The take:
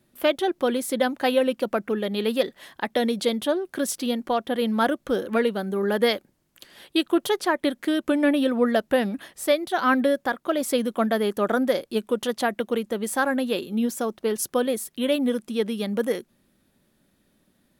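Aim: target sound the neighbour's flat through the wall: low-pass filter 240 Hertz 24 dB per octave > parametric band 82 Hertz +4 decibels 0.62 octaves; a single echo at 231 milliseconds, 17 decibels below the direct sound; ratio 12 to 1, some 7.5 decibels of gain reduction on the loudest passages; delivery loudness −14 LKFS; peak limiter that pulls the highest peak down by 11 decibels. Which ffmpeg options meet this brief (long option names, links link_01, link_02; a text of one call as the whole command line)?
ffmpeg -i in.wav -af "acompressor=threshold=-23dB:ratio=12,alimiter=limit=-22.5dB:level=0:latency=1,lowpass=frequency=240:width=0.5412,lowpass=frequency=240:width=1.3066,equalizer=frequency=82:width_type=o:width=0.62:gain=4,aecho=1:1:231:0.141,volume=24dB" out.wav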